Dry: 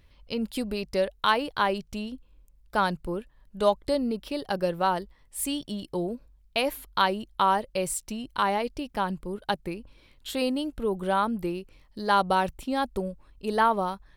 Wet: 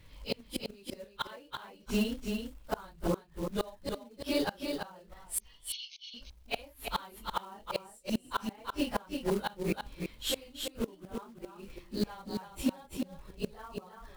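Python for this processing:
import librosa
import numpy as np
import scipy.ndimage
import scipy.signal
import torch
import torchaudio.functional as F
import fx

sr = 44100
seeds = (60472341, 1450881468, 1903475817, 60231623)

y = fx.phase_scramble(x, sr, seeds[0], window_ms=100)
y = fx.gate_flip(y, sr, shuts_db=-23.0, range_db=-30)
y = fx.quant_float(y, sr, bits=2)
y = fx.brickwall_bandpass(y, sr, low_hz=2100.0, high_hz=6500.0, at=(5.4, 6.14))
y = y + 10.0 ** (-5.5 / 20.0) * np.pad(y, (int(335 * sr / 1000.0), 0))[:len(y)]
y = y * 10.0 ** (4.5 / 20.0)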